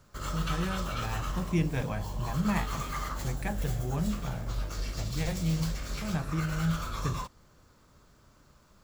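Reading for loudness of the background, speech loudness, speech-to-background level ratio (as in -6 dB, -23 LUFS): -37.0 LUFS, -34.5 LUFS, 2.5 dB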